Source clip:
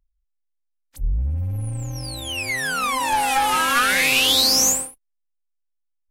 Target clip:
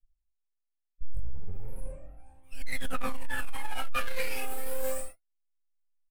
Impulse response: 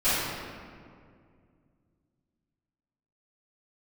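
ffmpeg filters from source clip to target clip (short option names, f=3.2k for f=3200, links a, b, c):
-filter_complex "[0:a]asuperstop=centerf=4600:order=12:qfactor=0.81,aecho=1:1:4.2:0.33,acrossover=split=180[a][b];[b]adelay=120[c];[a][c]amix=inputs=2:normalize=0,aeval=exprs='max(val(0),0)':c=same,aphaser=in_gain=1:out_gain=1:delay=2.5:decay=0.78:speed=0.34:type=triangular,agate=range=-23dB:threshold=-25dB:ratio=16:detection=peak,asettb=1/sr,asplit=3[d][e][f];[d]atrim=end=1.794[g];[e]atrim=start=1.79:end=2.43,asetpts=PTS-STARTPTS,afade=t=in:d=0.004:c=qsin,afade=t=out:st=0.636:d=0.004:c=qsin,aemphasis=mode=reproduction:type=75fm[h];[f]atrim=start=2.426[i];[g][h]acrossfade=d=0.004:c1=hsin:c2=qsin[j];[j][i]acrossfade=d=0.004:c1=qsin:c2=hsin[k];[1:a]atrim=start_sample=2205,atrim=end_sample=6174[l];[k][l]afir=irnorm=-1:irlink=0,dynaudnorm=f=200:g=11:m=11.5dB,asoftclip=type=tanh:threshold=-15.5dB,volume=-4.5dB"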